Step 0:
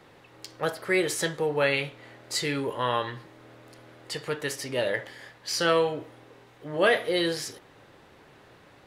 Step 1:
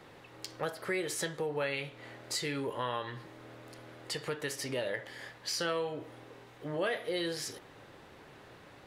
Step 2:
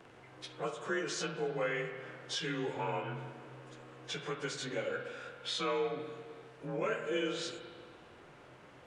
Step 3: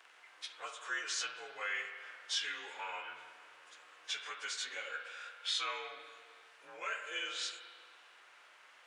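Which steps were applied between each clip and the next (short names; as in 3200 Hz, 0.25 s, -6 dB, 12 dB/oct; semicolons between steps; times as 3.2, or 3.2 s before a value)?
compressor 2.5:1, threshold -35 dBFS, peak gain reduction 12.5 dB
inharmonic rescaling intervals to 90%; spring tank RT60 1.9 s, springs 38/48 ms, chirp 65 ms, DRR 6.5 dB
HPF 1400 Hz 12 dB/oct; gain +2.5 dB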